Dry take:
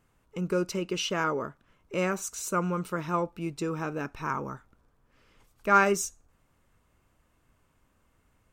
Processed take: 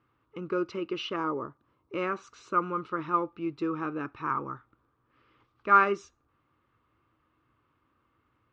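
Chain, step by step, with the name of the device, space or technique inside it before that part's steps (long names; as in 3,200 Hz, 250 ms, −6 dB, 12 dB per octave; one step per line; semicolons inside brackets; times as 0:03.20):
guitar cabinet (loudspeaker in its box 81–4,000 Hz, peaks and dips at 120 Hz +4 dB, 180 Hz −7 dB, 320 Hz +8 dB, 660 Hz −5 dB, 1,200 Hz +10 dB)
0:01.16–0:01.94: flat-topped bell 2,100 Hz −8.5 dB
level −4 dB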